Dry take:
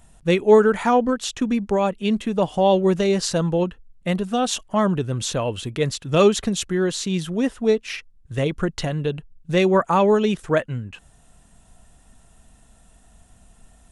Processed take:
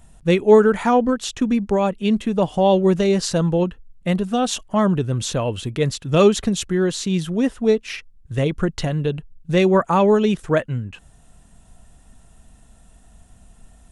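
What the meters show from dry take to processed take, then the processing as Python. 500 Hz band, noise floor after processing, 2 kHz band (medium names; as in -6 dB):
+1.5 dB, -51 dBFS, 0.0 dB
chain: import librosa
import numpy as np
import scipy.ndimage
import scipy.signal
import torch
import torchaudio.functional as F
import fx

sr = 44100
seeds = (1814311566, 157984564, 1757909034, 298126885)

y = fx.low_shelf(x, sr, hz=320.0, db=4.0)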